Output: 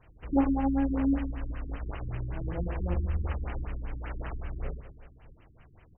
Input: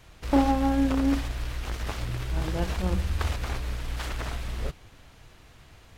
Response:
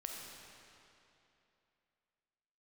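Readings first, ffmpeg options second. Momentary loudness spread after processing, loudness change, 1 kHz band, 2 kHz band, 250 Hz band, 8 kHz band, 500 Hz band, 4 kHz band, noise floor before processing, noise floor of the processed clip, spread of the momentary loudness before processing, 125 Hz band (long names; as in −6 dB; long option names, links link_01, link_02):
12 LU, −3.5 dB, −7.0 dB, −8.5 dB, −2.5 dB, below −35 dB, −5.0 dB, −19.0 dB, −53 dBFS, −58 dBFS, 10 LU, −3.5 dB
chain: -af "aecho=1:1:40|104|206.4|370.2|632.4:0.631|0.398|0.251|0.158|0.1,afftfilt=real='re*lt(b*sr/1024,360*pow(3200/360,0.5+0.5*sin(2*PI*5.2*pts/sr)))':imag='im*lt(b*sr/1024,360*pow(3200/360,0.5+0.5*sin(2*PI*5.2*pts/sr)))':win_size=1024:overlap=0.75,volume=-5.5dB"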